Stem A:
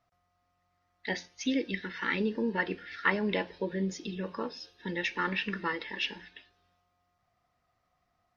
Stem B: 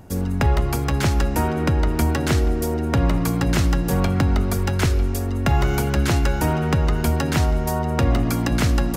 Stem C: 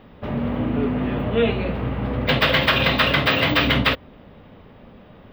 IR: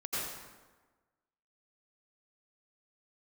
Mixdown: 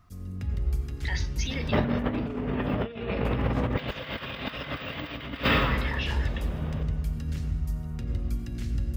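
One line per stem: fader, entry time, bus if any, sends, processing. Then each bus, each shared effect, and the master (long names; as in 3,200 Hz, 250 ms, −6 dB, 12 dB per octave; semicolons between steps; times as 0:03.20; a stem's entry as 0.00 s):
−5.5 dB, 0.00 s, bus A, no send, parametric band 1,100 Hz +14 dB 0.94 octaves
−8.0 dB, 0.00 s, bus A, send −3.5 dB, guitar amp tone stack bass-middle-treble 10-0-1; high-shelf EQ 4,300 Hz −10.5 dB
−1.0 dB, 1.50 s, no bus, send −10.5 dB, notch filter 4,100 Hz, Q 15
bus A: 0.0 dB, tilt shelving filter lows −8.5 dB, about 860 Hz; brickwall limiter −31 dBFS, peak gain reduction 22 dB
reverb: on, RT60 1.3 s, pre-delay 77 ms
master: compressor whose output falls as the input rises −26 dBFS, ratio −0.5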